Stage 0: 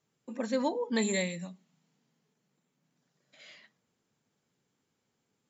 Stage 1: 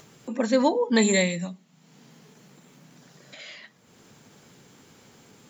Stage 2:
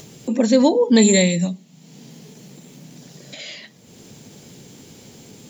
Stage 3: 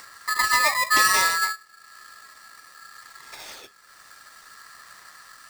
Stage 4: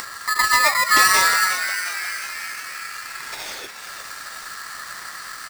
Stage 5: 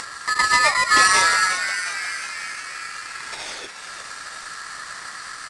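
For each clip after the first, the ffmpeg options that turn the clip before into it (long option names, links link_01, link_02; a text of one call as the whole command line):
ffmpeg -i in.wav -af "acompressor=mode=upward:threshold=-47dB:ratio=2.5,volume=9dB" out.wav
ffmpeg -i in.wav -filter_complex "[0:a]equalizer=frequency=1300:width_type=o:width=1.5:gain=-12.5,asplit=2[link_01][link_02];[link_02]alimiter=limit=-20.5dB:level=0:latency=1:release=251,volume=1.5dB[link_03];[link_01][link_03]amix=inputs=2:normalize=0,volume=5dB" out.wav
ffmpeg -i in.wav -af "aphaser=in_gain=1:out_gain=1:delay=1.2:decay=0.25:speed=0.61:type=sinusoidal,aeval=exprs='val(0)*sgn(sin(2*PI*1500*n/s))':channel_layout=same,volume=-5.5dB" out.wav
ffmpeg -i in.wav -filter_complex "[0:a]acompressor=mode=upward:threshold=-29dB:ratio=2.5,asplit=2[link_01][link_02];[link_02]asplit=8[link_03][link_04][link_05][link_06][link_07][link_08][link_09][link_10];[link_03]adelay=358,afreqshift=140,volume=-9dB[link_11];[link_04]adelay=716,afreqshift=280,volume=-13.3dB[link_12];[link_05]adelay=1074,afreqshift=420,volume=-17.6dB[link_13];[link_06]adelay=1432,afreqshift=560,volume=-21.9dB[link_14];[link_07]adelay=1790,afreqshift=700,volume=-26.2dB[link_15];[link_08]adelay=2148,afreqshift=840,volume=-30.5dB[link_16];[link_09]adelay=2506,afreqshift=980,volume=-34.8dB[link_17];[link_10]adelay=2864,afreqshift=1120,volume=-39.1dB[link_18];[link_11][link_12][link_13][link_14][link_15][link_16][link_17][link_18]amix=inputs=8:normalize=0[link_19];[link_01][link_19]amix=inputs=2:normalize=0,volume=3.5dB" out.wav
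ffmpeg -i in.wav -ar 22050 -c:a adpcm_ima_wav out.wav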